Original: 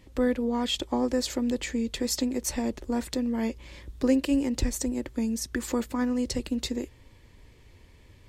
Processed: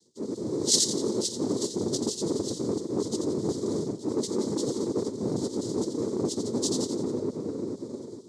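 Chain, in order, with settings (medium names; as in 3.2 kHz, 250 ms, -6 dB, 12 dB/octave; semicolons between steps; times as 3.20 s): frequency axis rescaled in octaves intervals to 125%; in parallel at -6 dB: bit crusher 7-bit; on the sum: brick-wall FIR band-stop 290–5600 Hz; peaking EQ 140 Hz -14 dB 0.62 oct; two-band feedback delay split 410 Hz, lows 451 ms, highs 87 ms, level -6 dB; noise-vocoded speech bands 6; reverse; compression 6:1, threshold -35 dBFS, peak gain reduction 14 dB; reverse; tilt shelf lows -5.5 dB, about 640 Hz; reverberation RT60 5.0 s, pre-delay 36 ms, DRR 17 dB; level rider gain up to 6 dB; transformer saturation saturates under 840 Hz; trim +7 dB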